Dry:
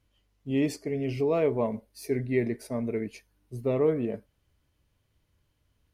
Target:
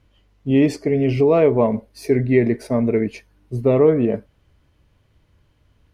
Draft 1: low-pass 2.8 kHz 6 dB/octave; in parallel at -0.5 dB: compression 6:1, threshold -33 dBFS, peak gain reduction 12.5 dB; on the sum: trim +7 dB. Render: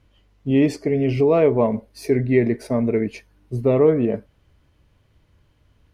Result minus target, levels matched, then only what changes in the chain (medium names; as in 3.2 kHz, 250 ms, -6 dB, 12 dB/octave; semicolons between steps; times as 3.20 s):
compression: peak gain reduction +5 dB
change: compression 6:1, threshold -27 dBFS, peak gain reduction 7.5 dB